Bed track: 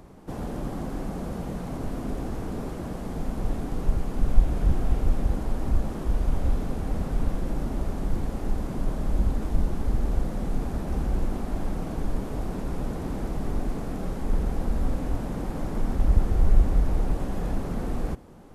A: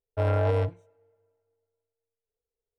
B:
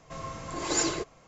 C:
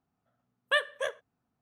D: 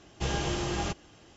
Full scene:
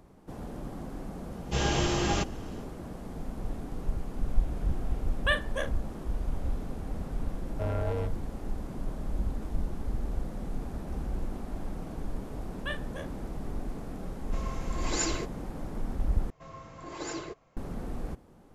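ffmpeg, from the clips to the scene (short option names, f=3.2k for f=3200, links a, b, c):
-filter_complex "[3:a]asplit=2[a][b];[2:a]asplit=2[c][d];[0:a]volume=-7.5dB[e];[4:a]dynaudnorm=f=140:g=3:m=12dB[f];[a]asplit=2[g][h];[h]adelay=40,volume=-9dB[i];[g][i]amix=inputs=2:normalize=0[j];[b]asplit=2[k][l];[l]adelay=36,volume=-7.5dB[m];[k][m]amix=inputs=2:normalize=0[n];[c]equalizer=f=2.4k:w=1.5:g=3[o];[d]lowpass=f=2.6k:p=1[p];[e]asplit=2[q][r];[q]atrim=end=16.304[s];[p]atrim=end=1.27,asetpts=PTS-STARTPTS,volume=-7dB[t];[r]atrim=start=17.566[u];[f]atrim=end=1.36,asetpts=PTS-STARTPTS,volume=-8.5dB,afade=t=in:d=0.004:c=hsin,afade=t=out:st=1.356:d=0.004:c=hsin,adelay=1310[v];[j]atrim=end=1.61,asetpts=PTS-STARTPTS,volume=-1.5dB,afade=t=in:d=0.004:c=hsin,afade=t=out:st=1.606:d=0.004:c=hsin,adelay=4550[w];[1:a]atrim=end=2.78,asetpts=PTS-STARTPTS,volume=-7.5dB,afade=t=in:d=0.004:c=hsin,afade=t=out:st=2.776:d=0.004:c=hsin,adelay=7420[x];[n]atrim=end=1.61,asetpts=PTS-STARTPTS,volume=-11dB,afade=t=in:d=0.004:c=hsin,afade=t=out:st=1.606:d=0.004:c=hsin,adelay=11940[y];[o]atrim=end=1.27,asetpts=PTS-STARTPTS,volume=-4dB,afade=t=in:d=0.004:c=hsin,afade=t=out:st=1.266:d=0.004:c=hsin,adelay=14220[z];[s][t]acrossfade=d=0.004:c1=hsin:c2=hsin[aa];[aa][u]acrossfade=d=0.004:c1=hsin:c2=hsin[ab];[ab][v][w][x][y][z]amix=inputs=6:normalize=0"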